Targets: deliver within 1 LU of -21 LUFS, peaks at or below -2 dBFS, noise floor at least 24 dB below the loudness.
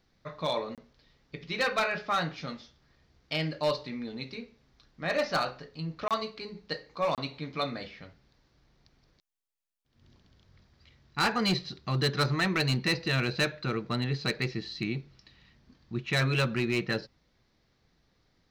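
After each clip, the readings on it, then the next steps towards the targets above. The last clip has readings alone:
clipped 0.6%; flat tops at -21.0 dBFS; dropouts 3; longest dropout 27 ms; loudness -30.5 LUFS; peak -21.0 dBFS; loudness target -21.0 LUFS
-> clip repair -21 dBFS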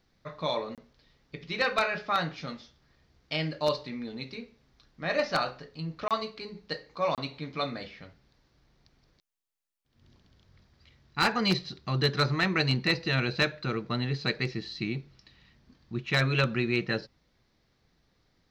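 clipped 0.0%; dropouts 3; longest dropout 27 ms
-> interpolate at 0.75/6.08/7.15, 27 ms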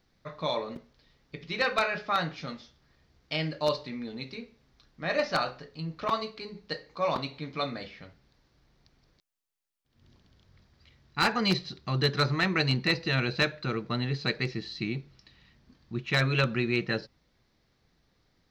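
dropouts 0; loudness -30.0 LUFS; peak -12.0 dBFS; loudness target -21.0 LUFS
-> gain +9 dB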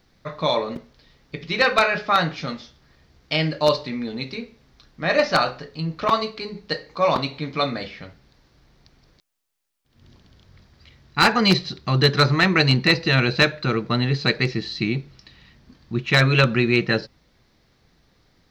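loudness -21.0 LUFS; peak -3.0 dBFS; noise floor -62 dBFS

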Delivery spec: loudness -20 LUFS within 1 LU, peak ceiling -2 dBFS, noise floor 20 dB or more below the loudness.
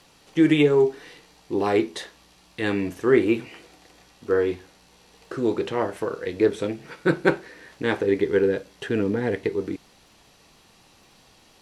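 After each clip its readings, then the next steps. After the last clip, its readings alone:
ticks 35/s; loudness -24.0 LUFS; peak -4.0 dBFS; loudness target -20.0 LUFS
-> de-click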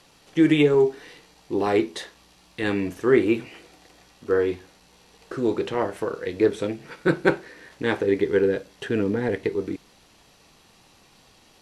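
ticks 0/s; loudness -24.0 LUFS; peak -4.0 dBFS; loudness target -20.0 LUFS
-> gain +4 dB; limiter -2 dBFS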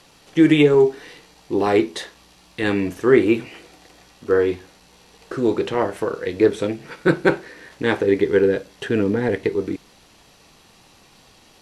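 loudness -20.0 LUFS; peak -2.0 dBFS; noise floor -53 dBFS

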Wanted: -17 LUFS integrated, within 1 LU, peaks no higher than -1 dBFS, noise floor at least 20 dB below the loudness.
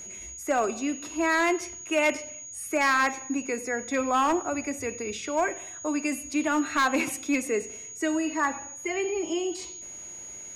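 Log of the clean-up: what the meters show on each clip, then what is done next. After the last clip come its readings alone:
clipped 0.7%; flat tops at -17.5 dBFS; steady tone 6700 Hz; tone level -39 dBFS; loudness -27.5 LUFS; peak -17.5 dBFS; loudness target -17.0 LUFS
-> clip repair -17.5 dBFS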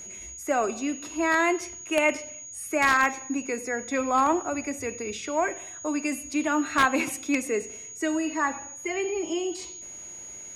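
clipped 0.0%; steady tone 6700 Hz; tone level -39 dBFS
-> notch 6700 Hz, Q 30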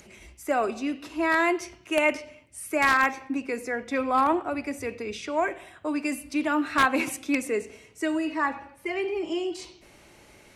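steady tone none; loudness -27.0 LUFS; peak -8.5 dBFS; loudness target -17.0 LUFS
-> gain +10 dB; limiter -1 dBFS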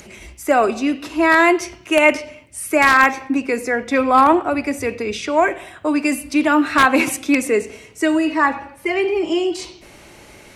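loudness -17.0 LUFS; peak -1.0 dBFS; noise floor -45 dBFS

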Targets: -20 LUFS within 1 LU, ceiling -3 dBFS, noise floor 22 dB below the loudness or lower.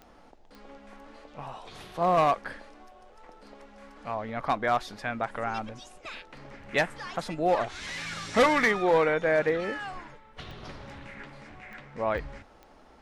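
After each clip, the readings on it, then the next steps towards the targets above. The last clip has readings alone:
clicks 6; loudness -27.5 LUFS; peak -15.0 dBFS; loudness target -20.0 LUFS
-> de-click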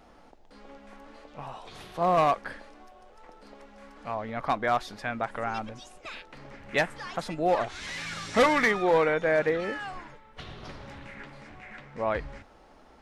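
clicks 0; loudness -27.5 LUFS; peak -15.0 dBFS; loudness target -20.0 LUFS
-> gain +7.5 dB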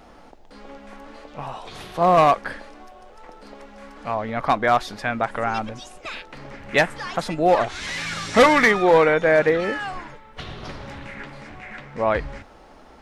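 loudness -20.0 LUFS; peak -7.5 dBFS; noise floor -47 dBFS

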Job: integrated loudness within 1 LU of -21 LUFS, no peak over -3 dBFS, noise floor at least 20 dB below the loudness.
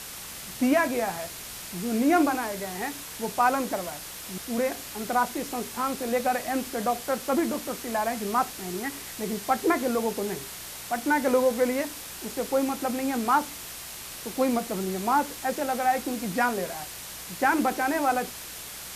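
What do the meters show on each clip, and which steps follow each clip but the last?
hum 60 Hz; harmonics up to 180 Hz; hum level -53 dBFS; noise floor -40 dBFS; noise floor target -48 dBFS; loudness -27.5 LUFS; peak -10.5 dBFS; loudness target -21.0 LUFS
-> de-hum 60 Hz, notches 3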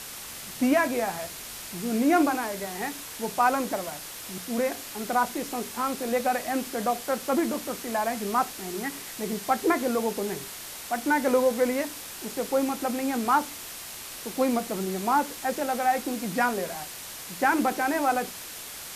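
hum none; noise floor -40 dBFS; noise floor target -48 dBFS
-> noise print and reduce 8 dB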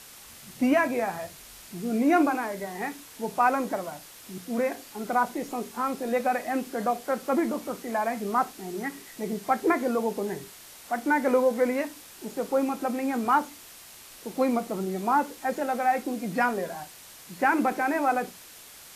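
noise floor -48 dBFS; loudness -27.5 LUFS; peak -11.0 dBFS; loudness target -21.0 LUFS
-> gain +6.5 dB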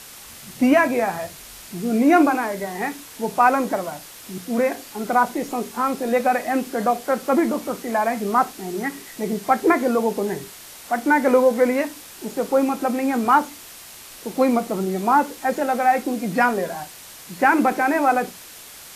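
loudness -21.0 LUFS; peak -4.5 dBFS; noise floor -41 dBFS

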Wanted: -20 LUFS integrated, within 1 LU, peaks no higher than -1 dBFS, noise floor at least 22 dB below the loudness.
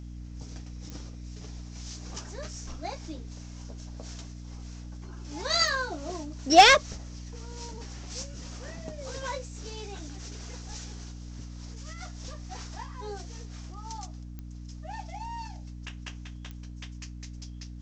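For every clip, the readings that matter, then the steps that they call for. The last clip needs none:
clicks 4; hum 60 Hz; harmonics up to 300 Hz; hum level -39 dBFS; loudness -28.0 LUFS; peak -6.5 dBFS; loudness target -20.0 LUFS
-> de-click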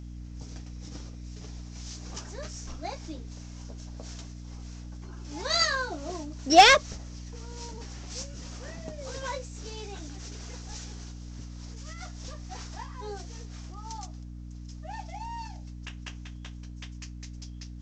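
clicks 0; hum 60 Hz; harmonics up to 300 Hz; hum level -39 dBFS
-> de-hum 60 Hz, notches 5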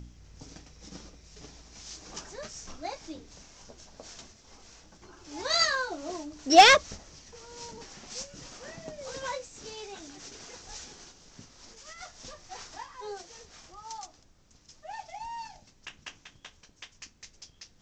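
hum none; loudness -25.0 LUFS; peak -6.5 dBFS; loudness target -20.0 LUFS
-> gain +5 dB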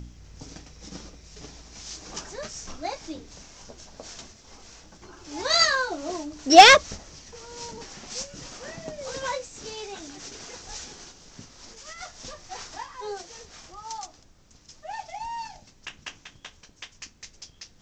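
loudness -20.0 LUFS; peak -1.5 dBFS; noise floor -56 dBFS

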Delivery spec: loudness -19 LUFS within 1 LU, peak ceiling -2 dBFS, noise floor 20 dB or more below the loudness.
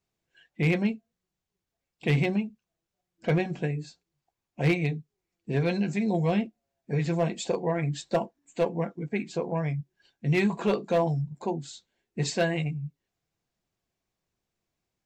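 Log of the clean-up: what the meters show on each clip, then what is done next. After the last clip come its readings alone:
clipped 0.3%; flat tops at -17.0 dBFS; loudness -28.5 LUFS; peak -17.0 dBFS; loudness target -19.0 LUFS
-> clip repair -17 dBFS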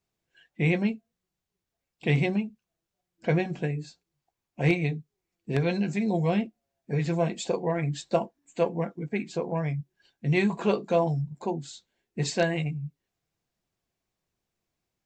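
clipped 0.0%; loudness -28.5 LUFS; peak -9.0 dBFS; loudness target -19.0 LUFS
-> gain +9.5 dB; limiter -2 dBFS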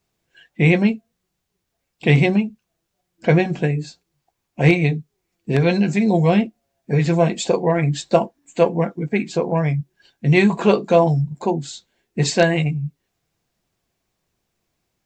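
loudness -19.0 LUFS; peak -2.0 dBFS; noise floor -76 dBFS

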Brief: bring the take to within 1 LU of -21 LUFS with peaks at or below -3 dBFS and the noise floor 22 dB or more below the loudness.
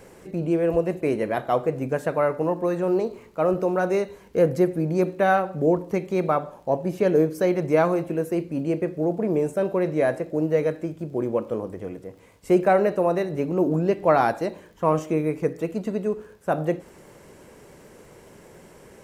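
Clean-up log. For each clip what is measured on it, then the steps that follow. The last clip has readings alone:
ticks 42/s; loudness -24.0 LUFS; peak -6.5 dBFS; loudness target -21.0 LUFS
-> de-click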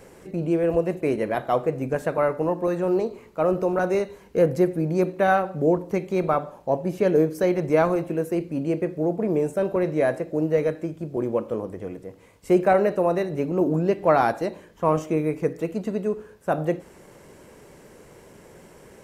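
ticks 0.053/s; loudness -24.0 LUFS; peak -6.5 dBFS; loudness target -21.0 LUFS
-> gain +3 dB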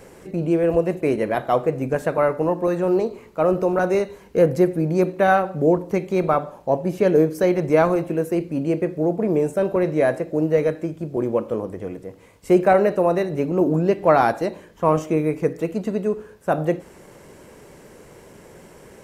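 loudness -21.0 LUFS; peak -3.5 dBFS; noise floor -47 dBFS

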